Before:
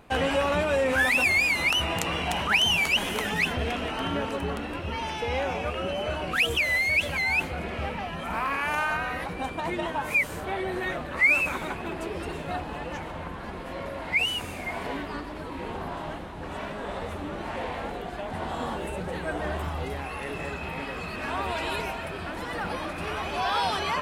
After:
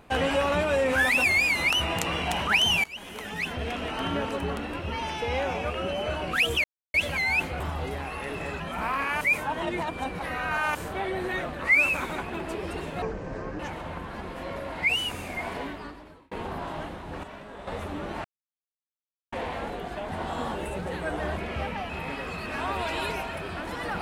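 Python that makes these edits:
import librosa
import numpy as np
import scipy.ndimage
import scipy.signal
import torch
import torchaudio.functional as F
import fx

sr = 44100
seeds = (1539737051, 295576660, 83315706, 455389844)

y = fx.edit(x, sr, fx.fade_in_from(start_s=2.84, length_s=1.21, floor_db=-21.5),
    fx.silence(start_s=6.64, length_s=0.3),
    fx.swap(start_s=7.6, length_s=0.52, other_s=19.59, other_length_s=1.0),
    fx.reverse_span(start_s=8.73, length_s=1.54),
    fx.speed_span(start_s=12.54, length_s=0.35, speed=0.61),
    fx.fade_out_span(start_s=14.76, length_s=0.85),
    fx.clip_gain(start_s=16.53, length_s=0.44, db=-8.0),
    fx.insert_silence(at_s=17.54, length_s=1.08), tone=tone)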